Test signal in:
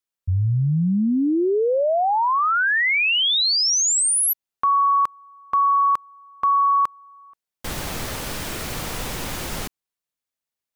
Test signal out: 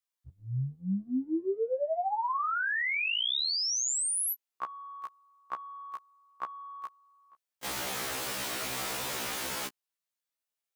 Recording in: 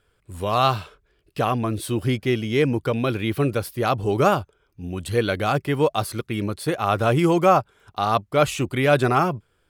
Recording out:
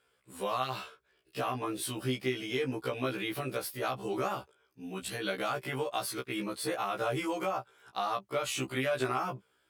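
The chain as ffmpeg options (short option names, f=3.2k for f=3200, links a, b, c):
-af "highpass=f=480:p=1,acompressor=threshold=-27dB:ratio=12:attack=11:release=116:knee=6:detection=peak,afftfilt=real='re*1.73*eq(mod(b,3),0)':imag='im*1.73*eq(mod(b,3),0)':win_size=2048:overlap=0.75"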